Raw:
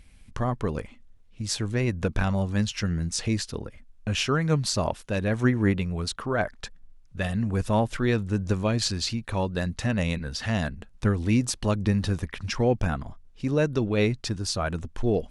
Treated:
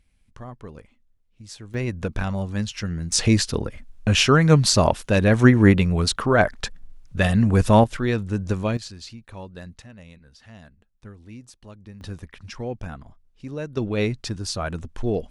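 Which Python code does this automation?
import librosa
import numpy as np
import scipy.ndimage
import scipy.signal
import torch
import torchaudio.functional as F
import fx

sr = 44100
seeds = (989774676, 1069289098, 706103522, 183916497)

y = fx.gain(x, sr, db=fx.steps((0.0, -11.5), (1.74, -1.0), (3.12, 8.5), (7.84, 1.0), (8.77, -11.0), (9.82, -19.0), (12.01, -8.0), (13.77, 0.0)))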